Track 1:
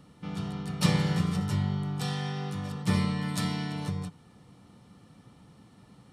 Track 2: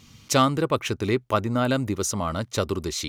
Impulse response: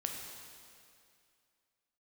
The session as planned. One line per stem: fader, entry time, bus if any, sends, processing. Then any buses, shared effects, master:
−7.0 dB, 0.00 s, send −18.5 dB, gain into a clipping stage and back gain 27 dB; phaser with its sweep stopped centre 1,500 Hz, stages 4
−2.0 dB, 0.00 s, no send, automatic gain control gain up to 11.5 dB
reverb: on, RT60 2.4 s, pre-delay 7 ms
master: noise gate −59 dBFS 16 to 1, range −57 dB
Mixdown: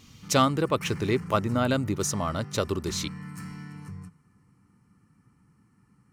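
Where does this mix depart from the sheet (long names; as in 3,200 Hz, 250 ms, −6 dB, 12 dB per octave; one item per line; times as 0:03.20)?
stem 2: missing automatic gain control gain up to 11.5 dB
master: missing noise gate −59 dBFS 16 to 1, range −57 dB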